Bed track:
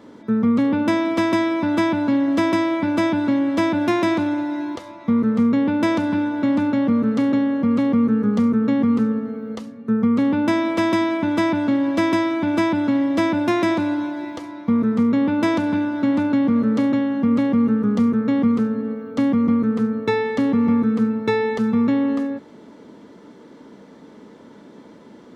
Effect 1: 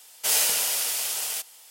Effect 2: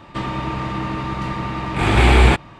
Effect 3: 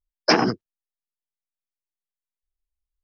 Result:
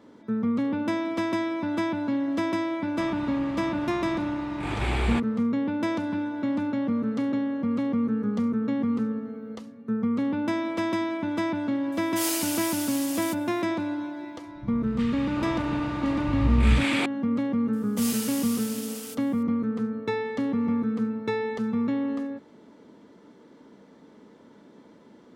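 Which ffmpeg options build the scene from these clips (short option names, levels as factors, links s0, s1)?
-filter_complex "[2:a]asplit=2[s0][s1];[1:a]asplit=2[s2][s3];[0:a]volume=0.398[s4];[s2]aecho=1:1:6.7:0.5[s5];[s1]acrossover=split=200|1300[s6][s7][s8];[s8]adelay=370[s9];[s7]adelay=740[s10];[s6][s10][s9]amix=inputs=3:normalize=0[s11];[s0]atrim=end=2.59,asetpts=PTS-STARTPTS,volume=0.2,afade=t=in:d=0.004:c=hsin,afade=t=out:st=2.586:d=0.004:c=hsin,adelay=2840[s12];[s5]atrim=end=1.7,asetpts=PTS-STARTPTS,volume=0.376,afade=t=in:d=0.004:c=hsin,afade=t=out:st=1.696:d=0.004:c=hsin,adelay=11920[s13];[s11]atrim=end=2.59,asetpts=PTS-STARTPTS,volume=0.447,afade=t=in:d=0.004:c=hsin,afade=t=out:st=2.586:d=0.004:c=hsin,adelay=14470[s14];[s3]atrim=end=1.7,asetpts=PTS-STARTPTS,volume=0.282,afade=t=in:d=0.004:c=hsin,afade=t=out:st=1.696:d=0.004:c=hsin,adelay=17730[s15];[s4][s12][s13][s14][s15]amix=inputs=5:normalize=0"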